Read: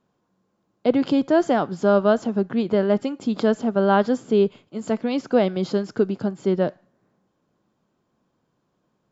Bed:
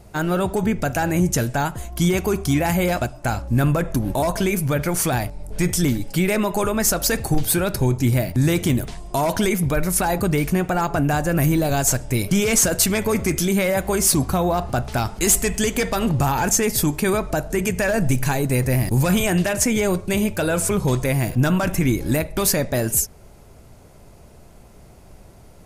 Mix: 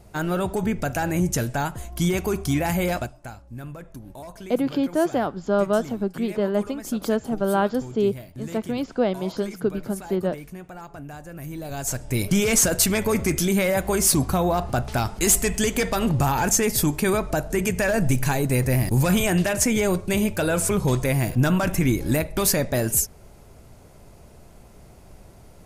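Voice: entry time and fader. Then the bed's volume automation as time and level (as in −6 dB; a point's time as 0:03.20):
3.65 s, −3.5 dB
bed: 0:02.96 −3.5 dB
0:03.37 −18.5 dB
0:11.40 −18.5 dB
0:12.22 −1.5 dB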